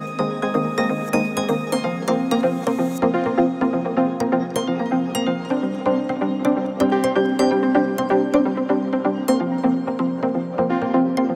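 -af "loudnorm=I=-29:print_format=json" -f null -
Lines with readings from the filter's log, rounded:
"input_i" : "-20.8",
"input_tp" : "-5.5",
"input_lra" : "1.7",
"input_thresh" : "-30.8",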